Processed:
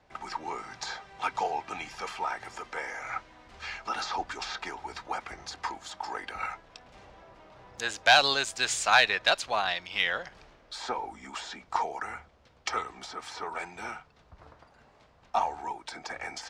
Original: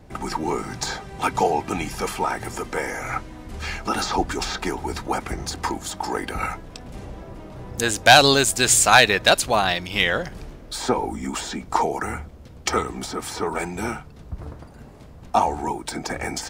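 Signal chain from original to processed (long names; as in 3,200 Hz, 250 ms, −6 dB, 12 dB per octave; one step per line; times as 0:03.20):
three-way crossover with the lows and the highs turned down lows −15 dB, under 590 Hz, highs −22 dB, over 6,300 Hz
harmonic generator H 8 −39 dB, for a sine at 0.5 dBFS
level −6.5 dB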